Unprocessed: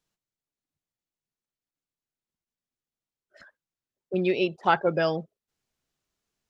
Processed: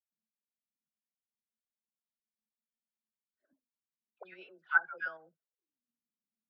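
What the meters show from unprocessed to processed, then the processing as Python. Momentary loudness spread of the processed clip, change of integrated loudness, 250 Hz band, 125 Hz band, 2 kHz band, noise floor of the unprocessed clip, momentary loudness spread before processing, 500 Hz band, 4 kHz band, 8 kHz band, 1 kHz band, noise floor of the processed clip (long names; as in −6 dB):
14 LU, −6.5 dB, below −30 dB, below −35 dB, +0.5 dB, below −85 dBFS, 8 LU, −28.0 dB, below −20 dB, can't be measured, −14.0 dB, below −85 dBFS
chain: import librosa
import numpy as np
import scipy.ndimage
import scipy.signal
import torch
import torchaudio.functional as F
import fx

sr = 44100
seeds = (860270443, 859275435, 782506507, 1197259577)

p1 = fx.dispersion(x, sr, late='lows', ms=115.0, hz=990.0)
p2 = fx.auto_wah(p1, sr, base_hz=220.0, top_hz=1500.0, q=16.0, full_db=-30.5, direction='up')
p3 = fx.level_steps(p2, sr, step_db=14)
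y = p2 + (p3 * librosa.db_to_amplitude(-1.0))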